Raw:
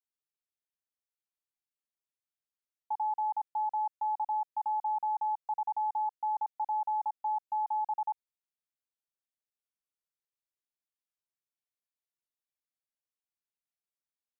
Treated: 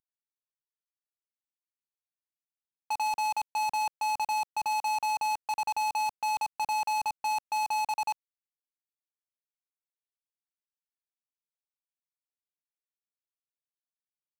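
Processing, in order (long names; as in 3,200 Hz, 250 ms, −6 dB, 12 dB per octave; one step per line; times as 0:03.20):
variable-slope delta modulation 64 kbit/s
parametric band 570 Hz −6 dB 0.26 octaves
leveller curve on the samples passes 5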